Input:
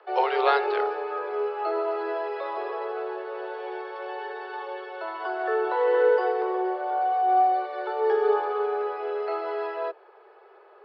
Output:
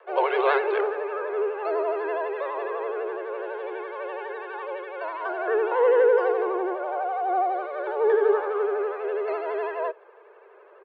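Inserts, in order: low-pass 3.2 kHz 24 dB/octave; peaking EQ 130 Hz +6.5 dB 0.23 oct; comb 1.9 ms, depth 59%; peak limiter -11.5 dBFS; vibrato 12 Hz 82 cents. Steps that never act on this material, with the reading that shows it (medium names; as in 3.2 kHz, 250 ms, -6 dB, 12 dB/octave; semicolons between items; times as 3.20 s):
peaking EQ 130 Hz: input has nothing below 320 Hz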